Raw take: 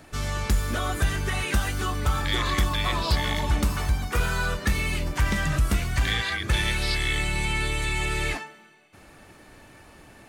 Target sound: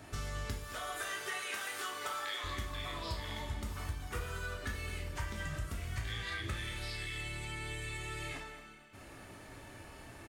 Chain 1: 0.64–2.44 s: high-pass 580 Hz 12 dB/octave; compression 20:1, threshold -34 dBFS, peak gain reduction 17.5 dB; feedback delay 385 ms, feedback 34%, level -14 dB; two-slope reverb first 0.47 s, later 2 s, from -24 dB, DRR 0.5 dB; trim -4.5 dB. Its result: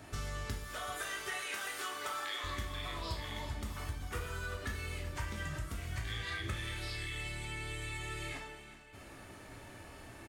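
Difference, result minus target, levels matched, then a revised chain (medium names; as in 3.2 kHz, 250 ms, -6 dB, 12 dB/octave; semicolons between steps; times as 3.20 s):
echo 162 ms late
0.64–2.44 s: high-pass 580 Hz 12 dB/octave; compression 20:1, threshold -34 dBFS, peak gain reduction 17.5 dB; feedback delay 223 ms, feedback 34%, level -14 dB; two-slope reverb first 0.47 s, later 2 s, from -24 dB, DRR 0.5 dB; trim -4.5 dB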